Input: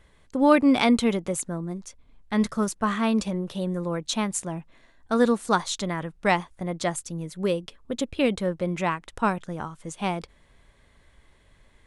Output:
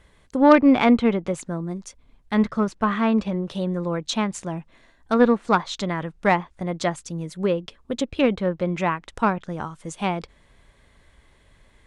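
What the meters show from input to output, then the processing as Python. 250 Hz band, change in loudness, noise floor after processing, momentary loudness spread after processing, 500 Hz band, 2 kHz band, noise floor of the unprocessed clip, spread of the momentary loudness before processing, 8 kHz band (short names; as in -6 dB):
+3.5 dB, +3.0 dB, -58 dBFS, 15 LU, +3.5 dB, +2.5 dB, -59 dBFS, 14 LU, -5.0 dB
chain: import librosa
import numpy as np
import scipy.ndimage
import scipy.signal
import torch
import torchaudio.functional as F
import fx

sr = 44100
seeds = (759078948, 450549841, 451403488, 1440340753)

y = fx.env_lowpass_down(x, sr, base_hz=2400.0, full_db=-20.0)
y = fx.cheby_harmonics(y, sr, harmonics=(4, 6, 7), levels_db=(-17, -24, -37), full_scale_db=-5.0)
y = y * 10.0 ** (3.5 / 20.0)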